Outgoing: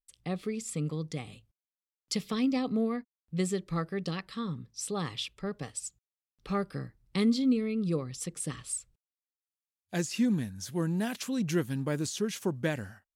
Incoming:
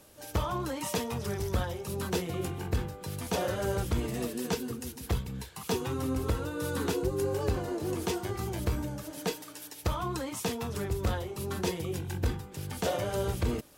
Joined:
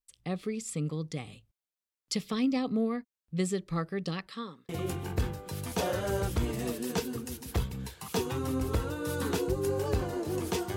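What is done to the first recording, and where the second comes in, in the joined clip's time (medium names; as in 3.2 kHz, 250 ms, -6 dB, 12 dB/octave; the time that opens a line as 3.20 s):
outgoing
4.27–4.69 s: high-pass 170 Hz -> 760 Hz
4.69 s: go over to incoming from 2.24 s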